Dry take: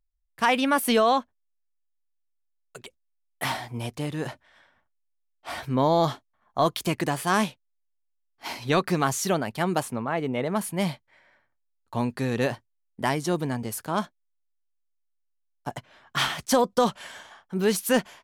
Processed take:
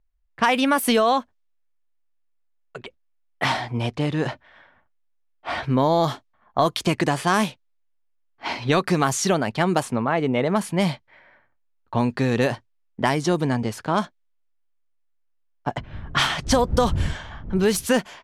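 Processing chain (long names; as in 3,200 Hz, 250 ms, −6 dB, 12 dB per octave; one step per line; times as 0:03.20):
0:15.77–0:17.85: wind on the microphone 95 Hz −32 dBFS
low-pass that shuts in the quiet parts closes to 2,500 Hz, open at −18.5 dBFS
downward compressor 2.5 to 1, threshold −25 dBFS, peak gain reduction 6.5 dB
level +7.5 dB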